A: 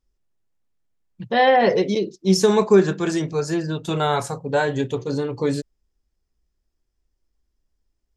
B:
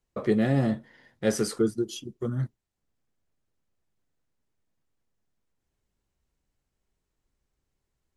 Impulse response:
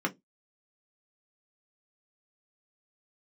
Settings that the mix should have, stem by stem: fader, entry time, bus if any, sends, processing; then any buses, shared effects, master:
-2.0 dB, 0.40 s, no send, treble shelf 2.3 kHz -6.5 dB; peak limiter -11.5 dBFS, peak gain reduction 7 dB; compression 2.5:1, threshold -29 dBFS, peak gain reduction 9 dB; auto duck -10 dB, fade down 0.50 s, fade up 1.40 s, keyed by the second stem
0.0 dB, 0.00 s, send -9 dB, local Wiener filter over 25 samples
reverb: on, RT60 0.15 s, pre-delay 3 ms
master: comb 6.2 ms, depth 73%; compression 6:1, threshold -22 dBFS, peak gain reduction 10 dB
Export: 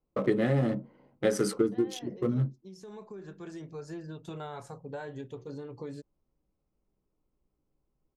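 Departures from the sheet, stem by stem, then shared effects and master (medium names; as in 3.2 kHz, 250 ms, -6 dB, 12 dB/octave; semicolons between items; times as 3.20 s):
stem A -2.0 dB -> -11.0 dB; master: missing comb 6.2 ms, depth 73%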